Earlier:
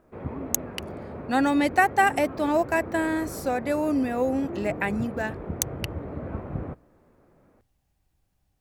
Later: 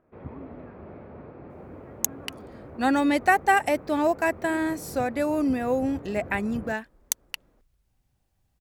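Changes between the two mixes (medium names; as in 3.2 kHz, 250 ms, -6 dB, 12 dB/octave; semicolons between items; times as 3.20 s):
speech: entry +1.50 s; background -6.0 dB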